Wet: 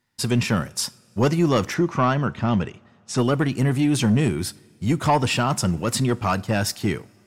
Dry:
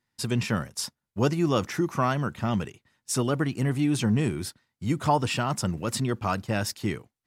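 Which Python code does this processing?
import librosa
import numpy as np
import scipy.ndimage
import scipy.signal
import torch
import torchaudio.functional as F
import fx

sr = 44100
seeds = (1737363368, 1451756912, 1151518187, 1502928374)

p1 = fx.fold_sine(x, sr, drive_db=8, ceiling_db=-9.5)
p2 = x + (p1 * librosa.db_to_amplitude(-11.5))
p3 = fx.air_absorb(p2, sr, metres=99.0, at=(1.74, 3.18))
y = fx.rev_double_slope(p3, sr, seeds[0], early_s=0.38, late_s=3.0, knee_db=-19, drr_db=17.5)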